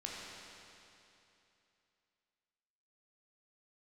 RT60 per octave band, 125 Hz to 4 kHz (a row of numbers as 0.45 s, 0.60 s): 3.0 s, 2.9 s, 2.9 s, 2.9 s, 2.9 s, 2.8 s